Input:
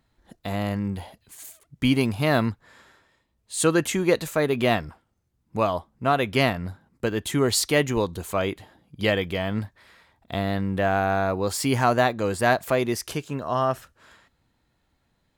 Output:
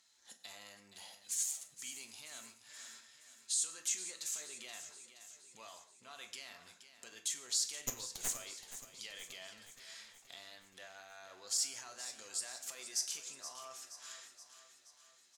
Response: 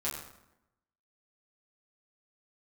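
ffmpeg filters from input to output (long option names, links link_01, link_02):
-filter_complex "[0:a]acompressor=threshold=-43dB:ratio=2.5,alimiter=level_in=11dB:limit=-24dB:level=0:latency=1:release=56,volume=-11dB,bandpass=frequency=6400:width_type=q:width=2.6:csg=0,asplit=3[link_01][link_02][link_03];[link_01]afade=type=out:start_time=7.8:duration=0.02[link_04];[link_02]aeval=exprs='0.0126*(cos(1*acos(clip(val(0)/0.0126,-1,1)))-cos(1*PI/2))+0.00316*(cos(6*acos(clip(val(0)/0.0126,-1,1)))-cos(6*PI/2))':channel_layout=same,afade=type=in:start_time=7.8:duration=0.02,afade=type=out:start_time=8.27:duration=0.02[link_05];[link_03]afade=type=in:start_time=8.27:duration=0.02[link_06];[link_04][link_05][link_06]amix=inputs=3:normalize=0,aecho=1:1:474|948|1422|1896|2370|2844:0.251|0.141|0.0788|0.0441|0.0247|0.0138,asplit=2[link_07][link_08];[1:a]atrim=start_sample=2205,afade=type=out:start_time=0.23:duration=0.01,atrim=end_sample=10584,lowshelf=frequency=150:gain=-9[link_09];[link_08][link_09]afir=irnorm=-1:irlink=0,volume=-6dB[link_10];[link_07][link_10]amix=inputs=2:normalize=0,volume=13.5dB"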